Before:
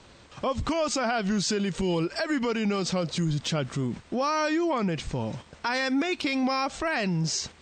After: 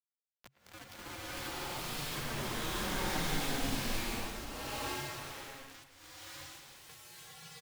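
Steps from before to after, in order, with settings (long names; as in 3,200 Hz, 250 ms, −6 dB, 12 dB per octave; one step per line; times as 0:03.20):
pitch glide at a constant tempo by −7.5 semitones ending unshifted
source passing by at 0:02.78, 7 m/s, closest 4 metres
parametric band 220 Hz −13.5 dB 0.38 octaves
mains-hum notches 50/100/150/200/250/300/350/400 Hz
downward compressor 2 to 1, threshold −41 dBFS, peak gain reduction 8 dB
bit-depth reduction 6 bits, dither none
frequency shifter −140 Hz
far-end echo of a speakerphone 110 ms, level −14 dB
slow-attack reverb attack 660 ms, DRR −12 dB
level −8.5 dB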